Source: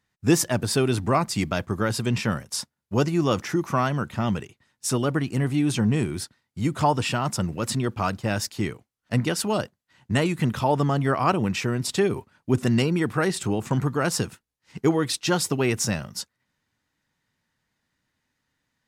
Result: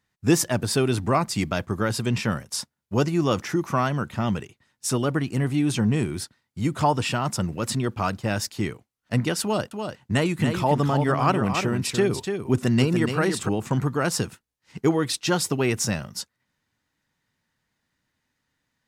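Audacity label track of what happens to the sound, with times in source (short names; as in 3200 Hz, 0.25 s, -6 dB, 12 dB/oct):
9.420000	13.490000	echo 0.291 s -6.5 dB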